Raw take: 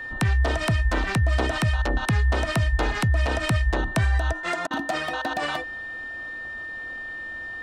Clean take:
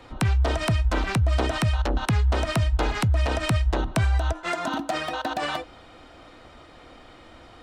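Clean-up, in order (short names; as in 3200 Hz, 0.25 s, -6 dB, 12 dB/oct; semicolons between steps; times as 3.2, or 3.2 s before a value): notch 1800 Hz, Q 30; interpolate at 4.67, 36 ms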